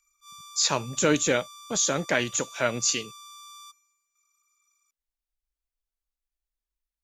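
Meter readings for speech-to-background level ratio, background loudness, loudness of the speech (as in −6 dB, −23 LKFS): 19.5 dB, −45.0 LKFS, −25.5 LKFS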